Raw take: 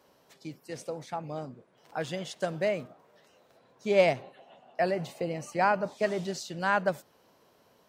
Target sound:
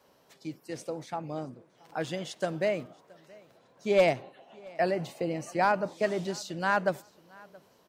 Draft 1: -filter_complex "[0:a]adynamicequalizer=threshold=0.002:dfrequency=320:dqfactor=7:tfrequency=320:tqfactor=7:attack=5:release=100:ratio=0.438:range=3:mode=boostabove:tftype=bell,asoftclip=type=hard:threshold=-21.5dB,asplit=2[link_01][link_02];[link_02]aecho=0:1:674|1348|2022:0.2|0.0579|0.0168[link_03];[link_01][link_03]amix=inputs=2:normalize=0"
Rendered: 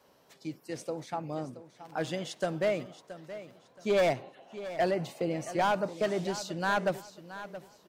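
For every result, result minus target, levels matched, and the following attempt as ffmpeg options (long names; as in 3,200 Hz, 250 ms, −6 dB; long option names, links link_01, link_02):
hard clipping: distortion +14 dB; echo-to-direct +11 dB
-filter_complex "[0:a]adynamicequalizer=threshold=0.002:dfrequency=320:dqfactor=7:tfrequency=320:tqfactor=7:attack=5:release=100:ratio=0.438:range=3:mode=boostabove:tftype=bell,asoftclip=type=hard:threshold=-14.5dB,asplit=2[link_01][link_02];[link_02]aecho=0:1:674|1348|2022:0.2|0.0579|0.0168[link_03];[link_01][link_03]amix=inputs=2:normalize=0"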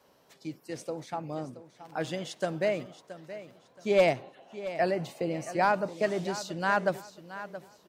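echo-to-direct +11 dB
-filter_complex "[0:a]adynamicequalizer=threshold=0.002:dfrequency=320:dqfactor=7:tfrequency=320:tqfactor=7:attack=5:release=100:ratio=0.438:range=3:mode=boostabove:tftype=bell,asoftclip=type=hard:threshold=-14.5dB,asplit=2[link_01][link_02];[link_02]aecho=0:1:674|1348:0.0562|0.0163[link_03];[link_01][link_03]amix=inputs=2:normalize=0"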